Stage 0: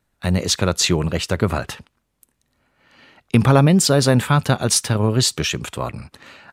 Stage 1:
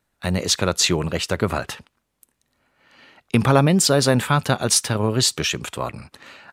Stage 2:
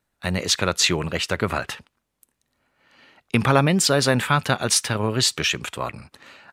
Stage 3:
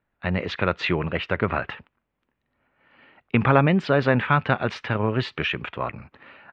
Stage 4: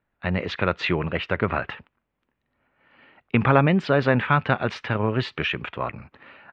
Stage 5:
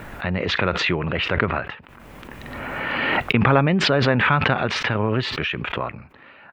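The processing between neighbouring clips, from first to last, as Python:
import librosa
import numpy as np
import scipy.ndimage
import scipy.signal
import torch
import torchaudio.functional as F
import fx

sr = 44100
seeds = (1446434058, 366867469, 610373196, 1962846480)

y1 = fx.low_shelf(x, sr, hz=210.0, db=-6.0)
y2 = fx.dynamic_eq(y1, sr, hz=2100.0, q=0.71, threshold_db=-36.0, ratio=4.0, max_db=6)
y2 = y2 * librosa.db_to_amplitude(-3.0)
y3 = scipy.signal.sosfilt(scipy.signal.butter(4, 2700.0, 'lowpass', fs=sr, output='sos'), y2)
y4 = y3
y5 = fx.pre_swell(y4, sr, db_per_s=21.0)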